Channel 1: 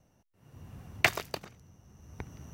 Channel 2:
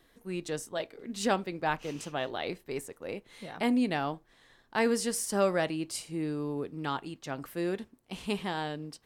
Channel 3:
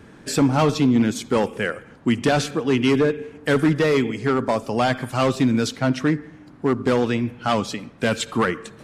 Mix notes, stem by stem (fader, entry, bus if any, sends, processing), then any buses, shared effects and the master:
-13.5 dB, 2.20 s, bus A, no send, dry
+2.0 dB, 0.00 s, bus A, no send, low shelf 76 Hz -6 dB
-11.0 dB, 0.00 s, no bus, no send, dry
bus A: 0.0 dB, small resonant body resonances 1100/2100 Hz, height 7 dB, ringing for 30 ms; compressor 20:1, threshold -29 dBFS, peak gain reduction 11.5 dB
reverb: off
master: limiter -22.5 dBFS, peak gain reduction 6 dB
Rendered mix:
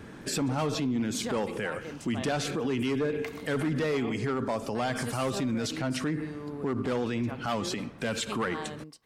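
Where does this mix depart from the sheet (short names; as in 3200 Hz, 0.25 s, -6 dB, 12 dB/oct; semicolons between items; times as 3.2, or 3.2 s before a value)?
stem 2 +2.0 dB -> -4.5 dB; stem 3 -11.0 dB -> +0.5 dB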